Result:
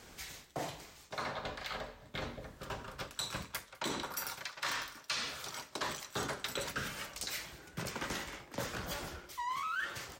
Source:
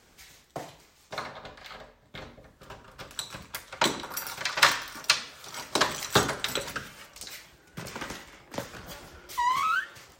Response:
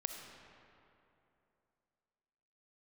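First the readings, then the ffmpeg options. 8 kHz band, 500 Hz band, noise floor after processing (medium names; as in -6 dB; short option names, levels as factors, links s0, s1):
-8.0 dB, -7.0 dB, -58 dBFS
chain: -af "areverse,acompressor=threshold=0.01:ratio=10,areverse,aecho=1:1:203:0.0708,volume=1.68"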